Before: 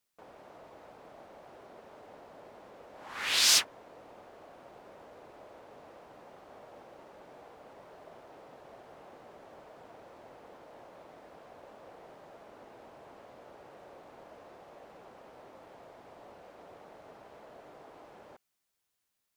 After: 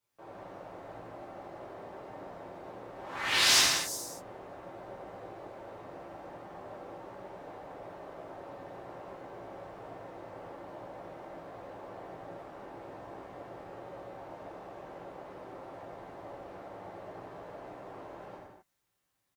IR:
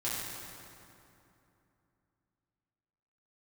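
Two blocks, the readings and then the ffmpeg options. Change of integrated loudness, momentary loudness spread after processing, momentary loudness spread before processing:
-11.0 dB, 10 LU, 21 LU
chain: -filter_complex "[0:a]highshelf=f=2300:g=-7.5,acrossover=split=280|6300[s0][s1][s2];[s2]aecho=1:1:359:0.473[s3];[s0][s1][s3]amix=inputs=3:normalize=0[s4];[1:a]atrim=start_sample=2205,afade=t=out:st=0.31:d=0.01,atrim=end_sample=14112[s5];[s4][s5]afir=irnorm=-1:irlink=0,volume=1.33"

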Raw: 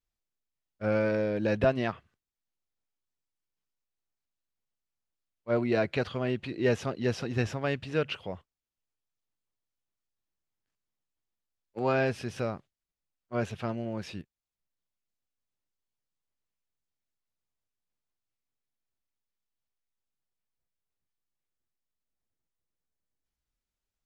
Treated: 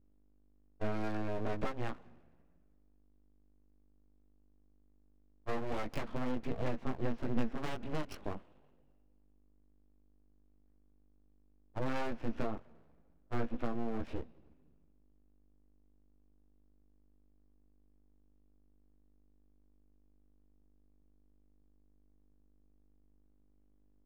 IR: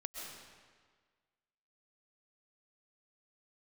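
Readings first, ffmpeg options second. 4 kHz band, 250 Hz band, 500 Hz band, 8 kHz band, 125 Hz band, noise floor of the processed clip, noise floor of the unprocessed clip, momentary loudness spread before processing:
-10.5 dB, -6.5 dB, -11.5 dB, -10.0 dB, -8.5 dB, -67 dBFS, under -85 dBFS, 15 LU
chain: -filter_complex "[0:a]adynamicsmooth=sensitivity=2.5:basefreq=1100,flanger=delay=15.5:depth=4.3:speed=0.43,acompressor=threshold=0.00794:ratio=6,equalizer=f=120:w=2.3:g=10.5,asplit=2[s0][s1];[1:a]atrim=start_sample=2205[s2];[s1][s2]afir=irnorm=-1:irlink=0,volume=0.106[s3];[s0][s3]amix=inputs=2:normalize=0,aeval=exprs='val(0)+0.000224*(sin(2*PI*50*n/s)+sin(2*PI*2*50*n/s)/2+sin(2*PI*3*50*n/s)/3+sin(2*PI*4*50*n/s)/4+sin(2*PI*5*50*n/s)/5)':c=same,aeval=exprs='abs(val(0))':c=same,volume=2.37"

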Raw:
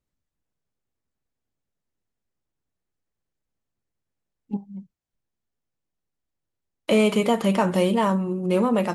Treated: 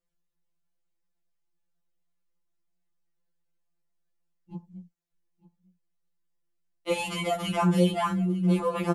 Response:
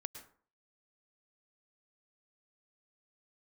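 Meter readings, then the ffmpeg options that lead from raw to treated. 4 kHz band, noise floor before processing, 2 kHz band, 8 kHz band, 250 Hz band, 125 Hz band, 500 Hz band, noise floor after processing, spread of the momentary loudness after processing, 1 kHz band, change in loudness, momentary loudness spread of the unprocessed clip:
-3.0 dB, -84 dBFS, -4.5 dB, -2.5 dB, -4.5 dB, +0.5 dB, -7.0 dB, -77 dBFS, 20 LU, -4.0 dB, -4.5 dB, 14 LU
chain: -af "aecho=1:1:900:0.1,afftfilt=real='re*2.83*eq(mod(b,8),0)':imag='im*2.83*eq(mod(b,8),0)':win_size=2048:overlap=0.75"

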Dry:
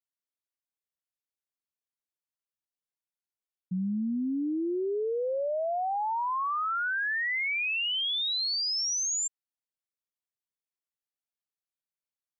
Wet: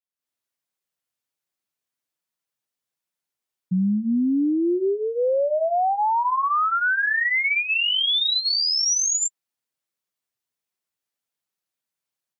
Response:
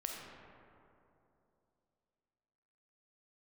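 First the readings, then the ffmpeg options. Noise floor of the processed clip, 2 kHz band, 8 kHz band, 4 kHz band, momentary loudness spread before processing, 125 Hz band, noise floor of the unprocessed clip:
under -85 dBFS, +8.0 dB, no reading, +8.0 dB, 4 LU, +9.0 dB, under -85 dBFS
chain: -af "highpass=63,dynaudnorm=f=140:g=3:m=3.76,flanger=delay=5.3:depth=3.1:regen=-33:speed=1.3:shape=sinusoidal"

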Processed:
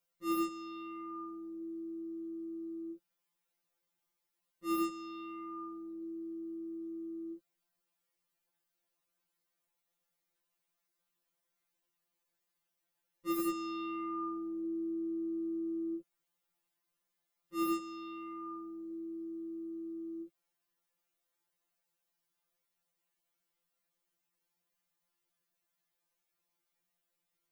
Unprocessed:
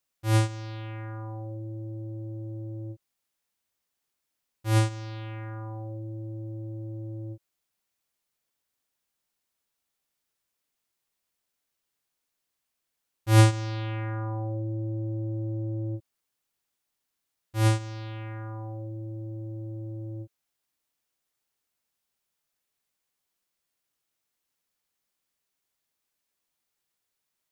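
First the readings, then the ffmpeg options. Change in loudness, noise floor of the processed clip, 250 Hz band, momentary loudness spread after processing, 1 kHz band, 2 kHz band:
-9.0 dB, -85 dBFS, -1.0 dB, 10 LU, -4.5 dB, -13.5 dB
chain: -af "aeval=exprs='0.0841*(abs(mod(val(0)/0.0841+3,4)-2)-1)':c=same,equalizer=f=6400:w=0.33:g=-5.5,afftfilt=real='re*2.83*eq(mod(b,8),0)':imag='im*2.83*eq(mod(b,8),0)':win_size=2048:overlap=0.75,volume=1.26"

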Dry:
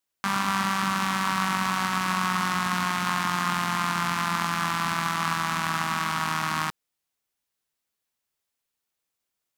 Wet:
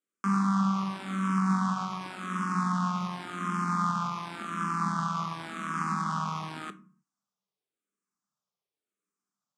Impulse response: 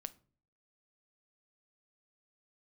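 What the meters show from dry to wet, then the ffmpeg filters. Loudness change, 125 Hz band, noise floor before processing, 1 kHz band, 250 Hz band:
-4.5 dB, +0.5 dB, -83 dBFS, -5.0 dB, +2.0 dB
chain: -filter_complex "[0:a]equalizer=f=200:w=0.98:g=7,alimiter=limit=0.188:level=0:latency=1:release=241,highpass=140,equalizer=f=190:t=q:w=4:g=7,equalizer=f=400:t=q:w=4:g=7,equalizer=f=1200:t=q:w=4:g=9,equalizer=f=1900:t=q:w=4:g=-6,equalizer=f=2800:t=q:w=4:g=-5,equalizer=f=4200:t=q:w=4:g=-6,lowpass=f=8700:w=0.5412,lowpass=f=8700:w=1.3066[s0];[1:a]atrim=start_sample=2205,afade=t=out:st=0.38:d=0.01,atrim=end_sample=17199[s1];[s0][s1]afir=irnorm=-1:irlink=0,asplit=2[s2][s3];[s3]afreqshift=-0.9[s4];[s2][s4]amix=inputs=2:normalize=1"

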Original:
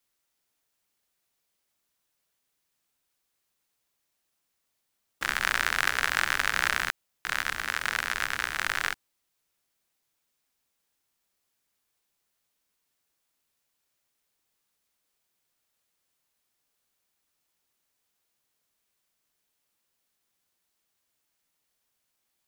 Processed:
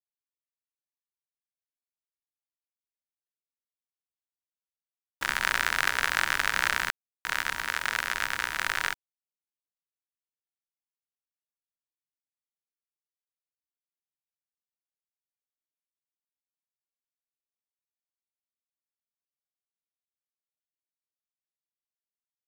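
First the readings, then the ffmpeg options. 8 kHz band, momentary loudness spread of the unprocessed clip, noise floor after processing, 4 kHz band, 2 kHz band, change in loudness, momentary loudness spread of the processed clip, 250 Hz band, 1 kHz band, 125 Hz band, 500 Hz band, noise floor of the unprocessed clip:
0.0 dB, 7 LU, under -85 dBFS, 0.0 dB, 0.0 dB, 0.0 dB, 7 LU, -1.0 dB, +0.5 dB, -1.0 dB, 0.0 dB, -79 dBFS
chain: -af "aeval=exprs='val(0)+0.00631*sin(2*PI*950*n/s)':c=same,aeval=exprs='val(0)*gte(abs(val(0)),0.00794)':c=same"

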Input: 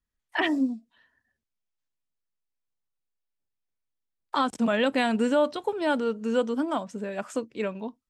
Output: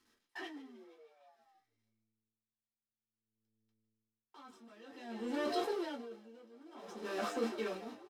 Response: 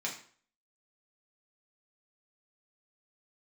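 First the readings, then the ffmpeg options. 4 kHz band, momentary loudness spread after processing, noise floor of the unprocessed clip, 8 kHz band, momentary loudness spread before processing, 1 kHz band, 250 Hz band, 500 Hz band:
-13.0 dB, 21 LU, -84 dBFS, -9.5 dB, 9 LU, -14.0 dB, -16.0 dB, -13.5 dB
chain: -filter_complex "[0:a]aeval=exprs='val(0)+0.5*0.0282*sgn(val(0))':c=same,agate=range=0.0178:threshold=0.0251:ratio=16:detection=peak,asoftclip=type=tanh:threshold=0.106,highshelf=f=7400:g=-10.5,bandreject=f=50:t=h:w=6,bandreject=f=100:t=h:w=6,bandreject=f=150:t=h:w=6,bandreject=f=200:t=h:w=6,asplit=6[s0][s1][s2][s3][s4][s5];[s1]adelay=156,afreqshift=110,volume=0.266[s6];[s2]adelay=312,afreqshift=220,volume=0.123[s7];[s3]adelay=468,afreqshift=330,volume=0.0562[s8];[s4]adelay=624,afreqshift=440,volume=0.026[s9];[s5]adelay=780,afreqshift=550,volume=0.0119[s10];[s0][s6][s7][s8][s9][s10]amix=inputs=6:normalize=0,alimiter=limit=0.0668:level=0:latency=1:release=310,equalizer=f=5100:t=o:w=0.21:g=7.5[s11];[1:a]atrim=start_sample=2205,atrim=end_sample=3528,asetrate=74970,aresample=44100[s12];[s11][s12]afir=irnorm=-1:irlink=0,areverse,acompressor=threshold=0.0112:ratio=6,areverse,aeval=exprs='val(0)*pow(10,-24*(0.5-0.5*cos(2*PI*0.54*n/s))/20)':c=same,volume=2.37"

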